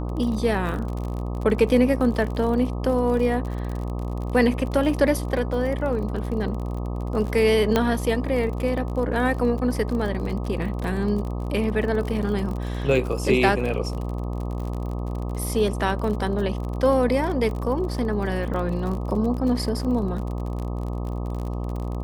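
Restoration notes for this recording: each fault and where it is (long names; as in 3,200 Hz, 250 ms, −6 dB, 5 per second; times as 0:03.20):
mains buzz 60 Hz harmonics 21 −28 dBFS
surface crackle 41 per second −30 dBFS
0:07.76: click −6 dBFS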